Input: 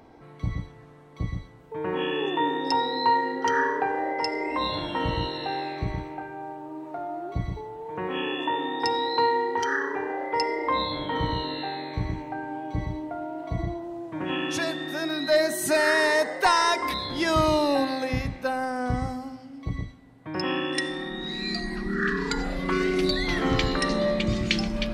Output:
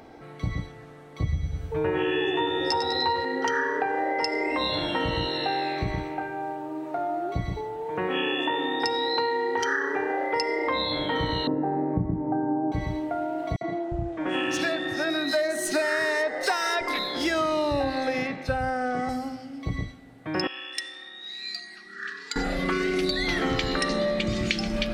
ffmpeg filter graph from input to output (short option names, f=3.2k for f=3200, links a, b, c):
-filter_complex "[0:a]asettb=1/sr,asplit=3[a][b][c];[a]atrim=end=1.234[d];[b]atrim=start=1.23:end=3.25,asetpts=PTS-STARTPTS,afade=t=in:d=0.004:c=qsin,afade=t=out:st=2.016:d=0.004:c=qsin,lowshelf=f=150:t=q:w=1.5:g=9.5,asplit=2[e][f];[f]adelay=13,volume=-2.5dB[g];[e][g]amix=inputs=2:normalize=0,atrim=end_sample=89082,aecho=1:1:100|200|300|400|500|600:0.531|0.26|0.127|0.0625|0.0306|0.015,atrim=end_sample=89082[h];[c]atrim=start=3.246[i];[d][h]acrossfade=d=0.004:c1=hsin:c2=qsin[j];[j][i]acrossfade=d=0.004:c1=qsin:c2=hsin,asettb=1/sr,asplit=3[k][l][m];[k]atrim=end=11.474[n];[l]atrim=start=11.47:end=12.72,asetpts=PTS-STARTPTS,afade=t=in:d=0.004:c=qsin,afade=t=out:st=1.246:d=0.004:c=qsin,lowpass=f=1.2k:w=0.5412,lowpass=f=1.2k:w=1.3066,equalizer=f=200:w=0.65:g=14[o];[m]atrim=start=12.716[p];[n][o]acrossfade=d=0.004:c1=hsin:c2=qsin[q];[q][p]acrossfade=d=0.004:c1=qsin:c2=hsin,asettb=1/sr,asplit=3[r][s][t];[r]atrim=end=13.564[u];[s]atrim=start=13.56:end=19.09,asetpts=PTS-STARTPTS,afade=t=in:d=0.004:c=qsin,afade=t=out:st=5.526:d=0.004:c=qsin,adynamicsmooth=sensitivity=3.5:basefreq=6k,acrossover=split=180|4100[v][w][x];[w]adelay=50[y];[v]adelay=350[z];[z][y][x]amix=inputs=3:normalize=0,atrim=end_sample=243873[aa];[t]atrim=start=19.086[ab];[u][aa]acrossfade=d=0.004:c1=hsin:c2=qsin[ac];[ac][ab]acrossfade=d=0.004:c1=qsin:c2=hsin,asettb=1/sr,asplit=3[ad][ae][af];[ad]atrim=end=20.474[ag];[ae]atrim=start=20.47:end=22.36,asetpts=PTS-STARTPTS,afade=t=in:d=0.004:c=qsin,afade=t=out:st=1.886:d=0.004:c=qsin,aderivative,adynamicsmooth=sensitivity=1:basefreq=5.2k[ah];[af]atrim=start=22.356[ai];[ag][ah]acrossfade=d=0.004:c1=hsin:c2=qsin[aj];[aj][ai]acrossfade=d=0.004:c1=qsin:c2=hsin,lowshelf=f=290:g=-5.5,bandreject=f=1k:w=5.1,acompressor=threshold=-29dB:ratio=6,volume=6.5dB"